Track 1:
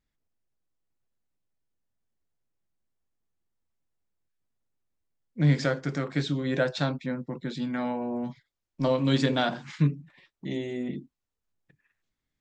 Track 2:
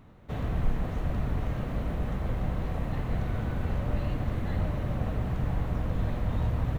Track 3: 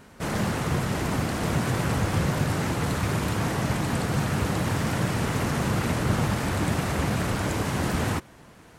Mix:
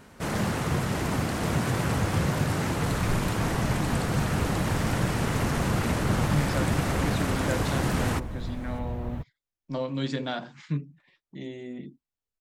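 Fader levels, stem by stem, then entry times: −6.0, −5.5, −1.0 decibels; 0.90, 2.45, 0.00 seconds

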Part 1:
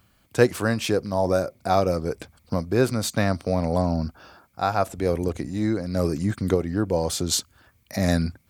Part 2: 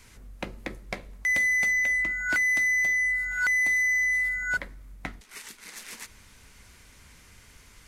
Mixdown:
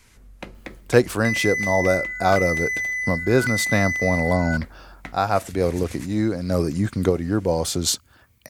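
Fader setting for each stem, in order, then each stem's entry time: +2.0, −1.5 decibels; 0.55, 0.00 seconds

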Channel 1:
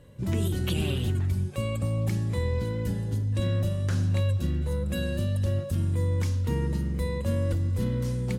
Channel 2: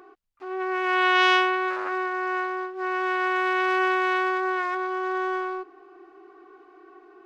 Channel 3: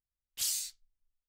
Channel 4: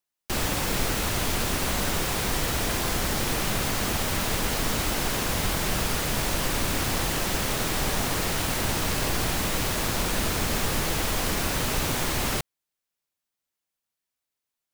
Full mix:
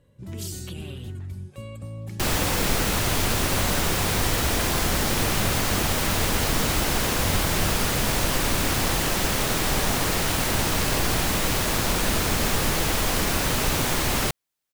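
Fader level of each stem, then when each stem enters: −8.5 dB, muted, −5.0 dB, +3.0 dB; 0.00 s, muted, 0.00 s, 1.90 s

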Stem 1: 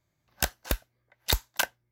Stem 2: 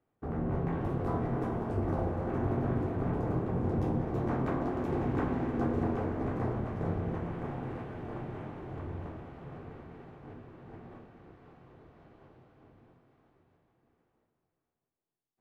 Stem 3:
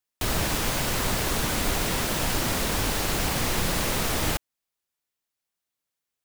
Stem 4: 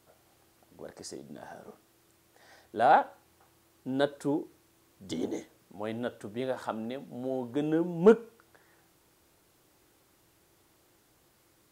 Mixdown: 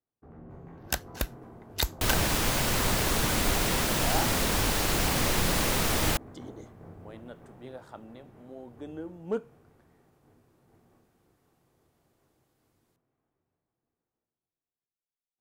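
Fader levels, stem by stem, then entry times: −2.5, −15.0, −0.5, −11.5 decibels; 0.50, 0.00, 1.80, 1.25 seconds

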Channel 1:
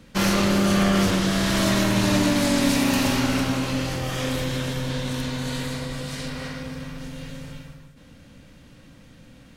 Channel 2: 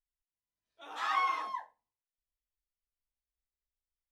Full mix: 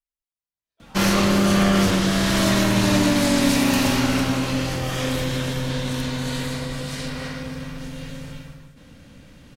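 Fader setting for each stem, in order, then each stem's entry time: +2.0, −4.0 decibels; 0.80, 0.00 seconds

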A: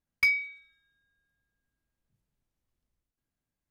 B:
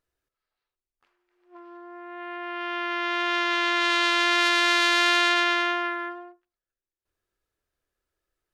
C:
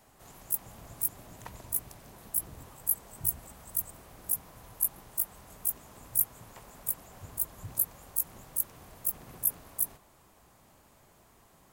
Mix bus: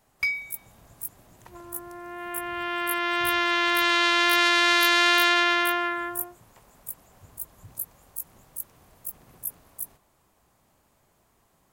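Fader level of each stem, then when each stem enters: −2.0, +1.0, −5.0 decibels; 0.00, 0.00, 0.00 seconds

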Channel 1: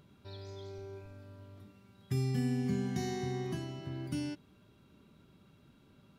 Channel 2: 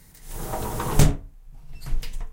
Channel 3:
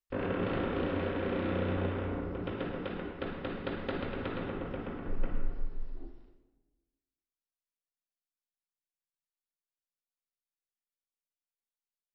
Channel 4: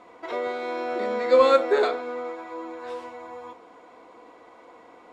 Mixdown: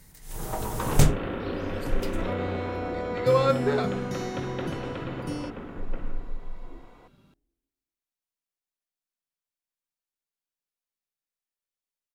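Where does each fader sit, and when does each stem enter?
+2.0, −2.0, +0.5, −5.0 decibels; 1.15, 0.00, 0.70, 1.95 seconds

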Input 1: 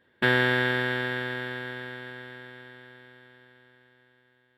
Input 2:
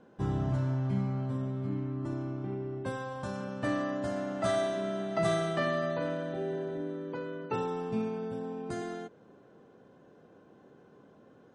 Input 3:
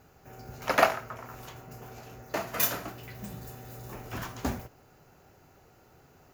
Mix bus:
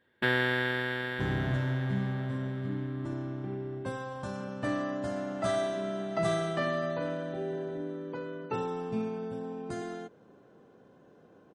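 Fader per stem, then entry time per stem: −5.0 dB, −0.5 dB, muted; 0.00 s, 1.00 s, muted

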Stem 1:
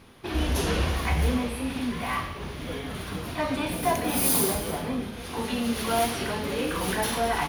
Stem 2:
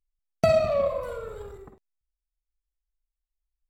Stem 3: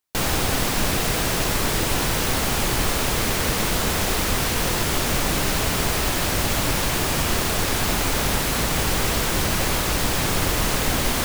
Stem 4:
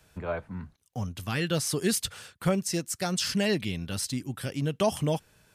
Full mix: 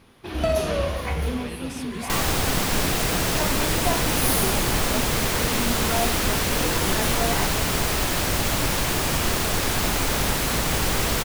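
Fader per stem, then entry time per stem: −2.0, −3.0, −1.0, −10.5 decibels; 0.00, 0.00, 1.95, 0.10 seconds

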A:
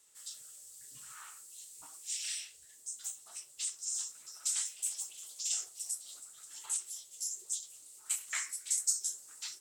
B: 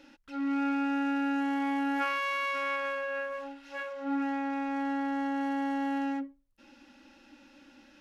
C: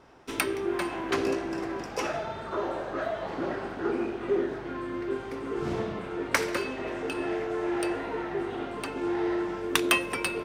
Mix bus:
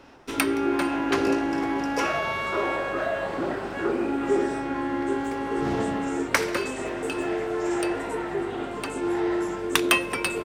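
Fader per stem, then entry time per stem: −12.0, +1.5, +3.0 decibels; 2.20, 0.00, 0.00 seconds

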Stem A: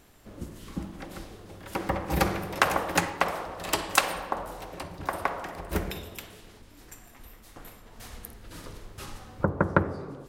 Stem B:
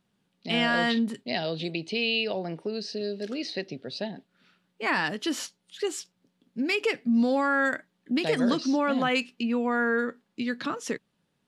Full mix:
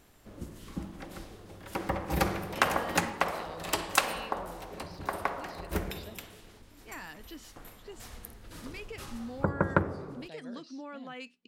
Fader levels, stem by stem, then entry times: −3.0, −18.0 decibels; 0.00, 2.05 seconds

